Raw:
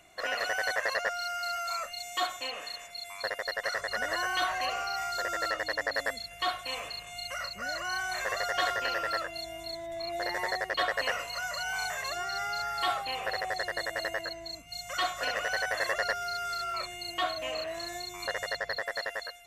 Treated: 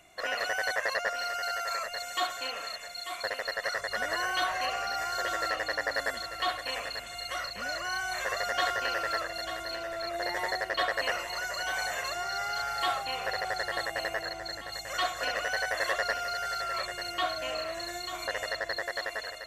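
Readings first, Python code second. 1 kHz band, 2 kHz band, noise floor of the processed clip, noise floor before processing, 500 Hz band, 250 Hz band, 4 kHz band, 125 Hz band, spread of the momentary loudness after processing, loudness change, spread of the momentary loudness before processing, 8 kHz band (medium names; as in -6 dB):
+0.5 dB, +0.5 dB, -42 dBFS, -46 dBFS, +0.5 dB, +0.5 dB, +0.5 dB, +0.5 dB, 6 LU, +0.5 dB, 7 LU, +0.5 dB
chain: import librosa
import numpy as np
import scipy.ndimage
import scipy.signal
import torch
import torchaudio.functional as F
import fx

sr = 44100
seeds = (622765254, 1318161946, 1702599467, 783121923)

y = x + fx.echo_feedback(x, sr, ms=892, feedback_pct=41, wet_db=-9.5, dry=0)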